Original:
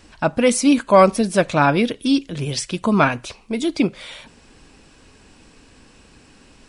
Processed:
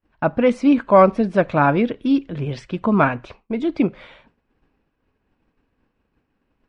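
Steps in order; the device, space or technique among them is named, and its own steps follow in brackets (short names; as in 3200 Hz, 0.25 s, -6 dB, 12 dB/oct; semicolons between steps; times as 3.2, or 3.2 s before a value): hearing-loss simulation (LPF 1900 Hz 12 dB/oct; expander -37 dBFS)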